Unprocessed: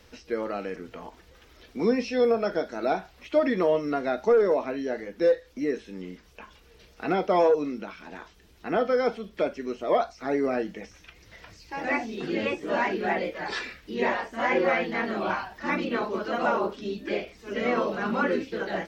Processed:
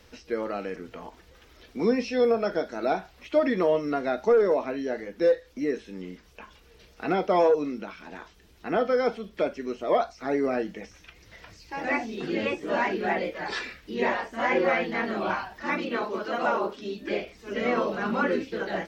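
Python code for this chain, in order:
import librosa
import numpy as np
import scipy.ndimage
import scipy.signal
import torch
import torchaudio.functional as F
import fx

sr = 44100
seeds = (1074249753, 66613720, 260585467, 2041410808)

y = fx.low_shelf(x, sr, hz=150.0, db=-10.0, at=(15.63, 17.02))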